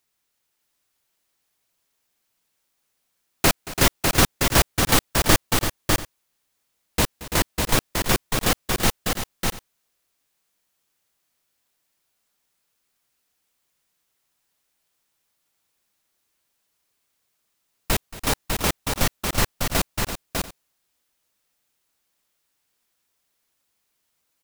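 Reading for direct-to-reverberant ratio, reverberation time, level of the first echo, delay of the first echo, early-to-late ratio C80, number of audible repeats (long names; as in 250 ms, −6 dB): no reverb audible, no reverb audible, −17.5 dB, 227 ms, no reverb audible, 4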